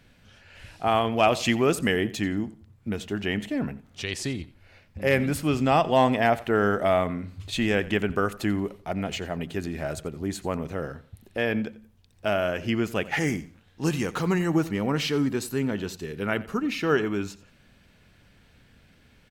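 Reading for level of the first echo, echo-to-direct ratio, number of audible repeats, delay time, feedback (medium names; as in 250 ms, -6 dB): -19.0 dB, -18.5 dB, 2, 88 ms, 28%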